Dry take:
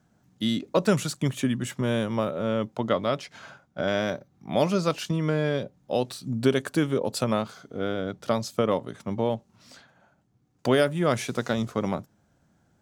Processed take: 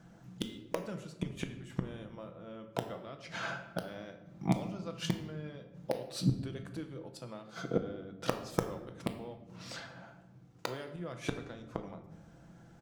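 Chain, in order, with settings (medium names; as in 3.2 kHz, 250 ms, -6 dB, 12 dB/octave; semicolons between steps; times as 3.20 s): treble shelf 7.3 kHz -9.5 dB; comb 5.9 ms, depth 35%; de-hum 81.89 Hz, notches 2; inverted gate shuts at -23 dBFS, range -28 dB; in parallel at -5.5 dB: integer overflow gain 22.5 dB; on the sum: simulated room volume 380 m³, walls mixed, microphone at 0.61 m; trim +3 dB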